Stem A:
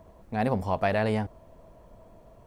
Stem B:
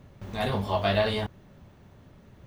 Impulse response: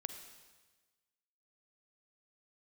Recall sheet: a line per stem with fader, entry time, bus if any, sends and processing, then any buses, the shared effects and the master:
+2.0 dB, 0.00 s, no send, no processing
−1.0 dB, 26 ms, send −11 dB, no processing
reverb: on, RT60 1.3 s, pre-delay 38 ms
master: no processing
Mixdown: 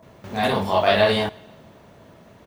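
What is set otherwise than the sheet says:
stem B −1.0 dB → +6.0 dB
master: extra high-pass filter 260 Hz 6 dB per octave

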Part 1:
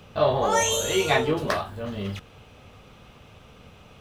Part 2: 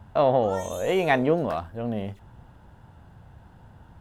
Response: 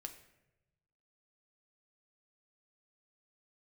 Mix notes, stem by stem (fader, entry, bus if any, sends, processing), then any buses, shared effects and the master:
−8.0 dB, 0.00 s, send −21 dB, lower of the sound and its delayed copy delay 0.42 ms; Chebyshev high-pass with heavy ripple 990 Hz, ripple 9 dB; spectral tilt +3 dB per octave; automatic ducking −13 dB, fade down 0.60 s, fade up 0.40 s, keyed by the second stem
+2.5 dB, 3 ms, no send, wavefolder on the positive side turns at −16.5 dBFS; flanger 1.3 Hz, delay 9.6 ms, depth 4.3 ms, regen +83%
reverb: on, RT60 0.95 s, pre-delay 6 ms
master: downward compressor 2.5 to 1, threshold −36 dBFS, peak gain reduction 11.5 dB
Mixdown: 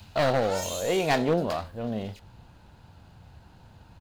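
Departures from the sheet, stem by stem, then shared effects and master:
stem 1 −8.0 dB → +0.5 dB
master: missing downward compressor 2.5 to 1, threshold −36 dBFS, peak gain reduction 11.5 dB

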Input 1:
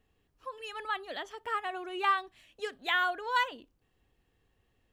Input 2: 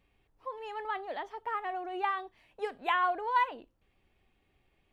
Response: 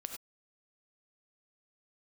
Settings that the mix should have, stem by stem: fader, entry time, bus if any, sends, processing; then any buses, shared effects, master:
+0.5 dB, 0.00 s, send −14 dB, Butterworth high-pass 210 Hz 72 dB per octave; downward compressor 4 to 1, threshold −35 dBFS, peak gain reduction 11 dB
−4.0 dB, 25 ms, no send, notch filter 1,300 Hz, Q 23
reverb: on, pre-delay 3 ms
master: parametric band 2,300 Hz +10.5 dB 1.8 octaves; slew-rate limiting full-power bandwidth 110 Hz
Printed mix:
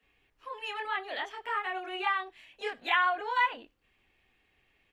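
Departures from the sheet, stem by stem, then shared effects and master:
stem 1 +0.5 dB → −6.0 dB
master: missing slew-rate limiting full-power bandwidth 110 Hz

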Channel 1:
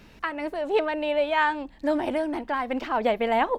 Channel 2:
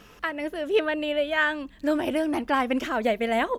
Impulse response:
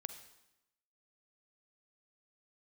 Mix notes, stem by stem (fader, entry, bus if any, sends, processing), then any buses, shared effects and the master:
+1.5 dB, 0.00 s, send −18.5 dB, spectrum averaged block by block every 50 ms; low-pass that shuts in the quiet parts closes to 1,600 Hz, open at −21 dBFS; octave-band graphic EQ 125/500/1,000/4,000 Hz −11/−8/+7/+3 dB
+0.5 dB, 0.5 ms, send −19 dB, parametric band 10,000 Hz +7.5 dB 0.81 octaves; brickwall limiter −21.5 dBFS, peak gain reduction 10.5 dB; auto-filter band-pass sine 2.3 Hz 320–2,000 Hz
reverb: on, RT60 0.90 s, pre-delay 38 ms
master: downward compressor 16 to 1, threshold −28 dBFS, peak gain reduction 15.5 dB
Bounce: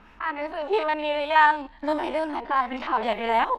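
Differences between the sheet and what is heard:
stem 2: polarity flipped
master: missing downward compressor 16 to 1, threshold −28 dBFS, peak gain reduction 15.5 dB

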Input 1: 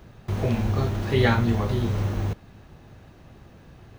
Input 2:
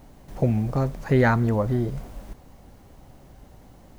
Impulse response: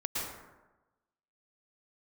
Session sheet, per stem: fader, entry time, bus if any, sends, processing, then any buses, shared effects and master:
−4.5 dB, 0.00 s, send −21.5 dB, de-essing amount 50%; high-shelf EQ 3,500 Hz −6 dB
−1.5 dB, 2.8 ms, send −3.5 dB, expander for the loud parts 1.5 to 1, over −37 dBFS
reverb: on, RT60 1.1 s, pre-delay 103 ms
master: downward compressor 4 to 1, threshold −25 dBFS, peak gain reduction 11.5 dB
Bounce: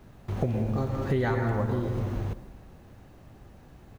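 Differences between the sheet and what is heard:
stem 1: send off
stem 2: polarity flipped

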